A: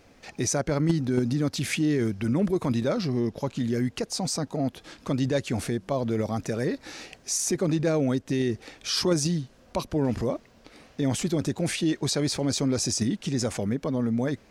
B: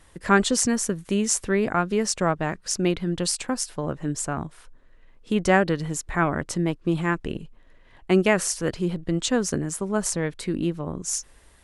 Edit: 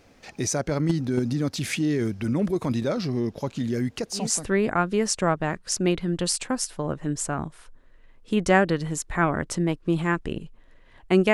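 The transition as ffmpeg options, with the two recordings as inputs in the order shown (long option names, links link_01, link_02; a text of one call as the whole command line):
ffmpeg -i cue0.wav -i cue1.wav -filter_complex "[0:a]apad=whole_dur=11.33,atrim=end=11.33,atrim=end=4.5,asetpts=PTS-STARTPTS[link_01];[1:a]atrim=start=1.11:end=8.32,asetpts=PTS-STARTPTS[link_02];[link_01][link_02]acrossfade=duration=0.38:curve1=qsin:curve2=qsin" out.wav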